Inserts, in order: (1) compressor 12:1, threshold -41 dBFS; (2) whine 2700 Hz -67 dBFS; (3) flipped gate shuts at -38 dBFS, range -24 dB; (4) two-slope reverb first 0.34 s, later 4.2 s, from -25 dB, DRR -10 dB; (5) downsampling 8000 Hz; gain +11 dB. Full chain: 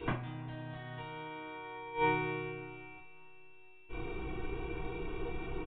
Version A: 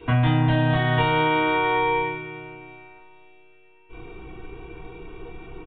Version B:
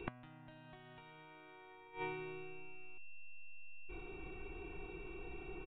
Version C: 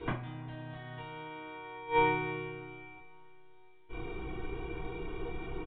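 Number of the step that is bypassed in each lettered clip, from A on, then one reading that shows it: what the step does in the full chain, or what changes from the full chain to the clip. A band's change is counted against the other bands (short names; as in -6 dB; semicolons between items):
3, momentary loudness spread change -4 LU; 4, momentary loudness spread change -7 LU; 2, 125 Hz band -1.5 dB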